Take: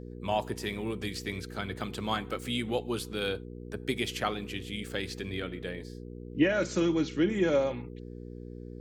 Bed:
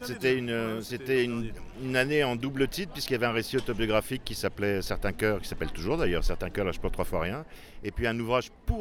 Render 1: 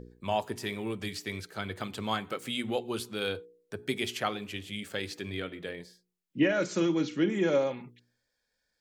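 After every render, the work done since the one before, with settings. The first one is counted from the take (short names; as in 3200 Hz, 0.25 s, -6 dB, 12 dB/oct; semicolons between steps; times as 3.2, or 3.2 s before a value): de-hum 60 Hz, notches 8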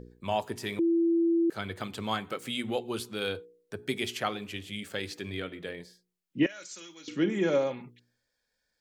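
0.79–1.5 bleep 335 Hz -21.5 dBFS; 6.46–7.08 pre-emphasis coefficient 0.97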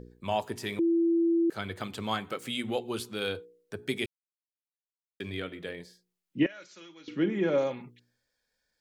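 4.06–5.2 mute; 6.43–7.58 air absorption 190 m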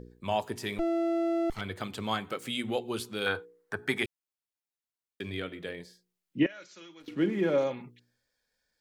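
0.78–1.61 minimum comb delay 0.94 ms; 3.26–4.03 band shelf 1200 Hz +12 dB; 7–7.65 backlash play -49.5 dBFS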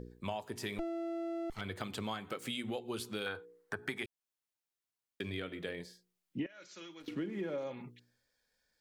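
compressor 10:1, threshold -35 dBFS, peak gain reduction 15.5 dB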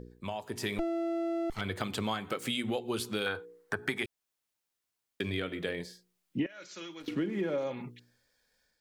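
AGC gain up to 6 dB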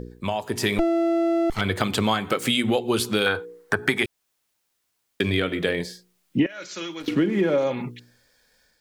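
gain +11 dB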